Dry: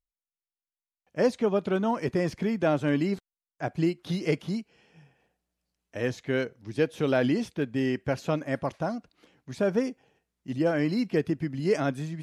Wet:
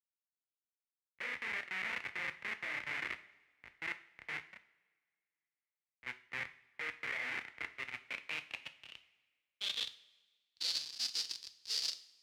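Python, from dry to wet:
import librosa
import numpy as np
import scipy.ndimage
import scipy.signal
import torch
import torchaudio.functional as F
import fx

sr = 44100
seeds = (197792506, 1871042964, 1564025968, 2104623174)

p1 = fx.spec_quant(x, sr, step_db=15)
p2 = fx.peak_eq(p1, sr, hz=2400.0, db=-8.0, octaves=1.1)
p3 = p2 + fx.room_flutter(p2, sr, wall_m=5.5, rt60_s=0.6, dry=0)
p4 = fx.schmitt(p3, sr, flips_db=-22.0)
p5 = fx.formant_shift(p4, sr, semitones=3)
p6 = fx.filter_sweep_bandpass(p5, sr, from_hz=2100.0, to_hz=4800.0, start_s=7.68, end_s=10.99, q=6.0)
p7 = fx.dynamic_eq(p6, sr, hz=500.0, q=0.77, threshold_db=-58.0, ratio=4.0, max_db=-3)
p8 = fx.level_steps(p7, sr, step_db=10)
p9 = fx.rev_double_slope(p8, sr, seeds[0], early_s=0.5, late_s=4.9, knee_db=-18, drr_db=8.5)
p10 = fx.band_widen(p9, sr, depth_pct=70)
y = F.gain(torch.from_numpy(p10), 10.0).numpy()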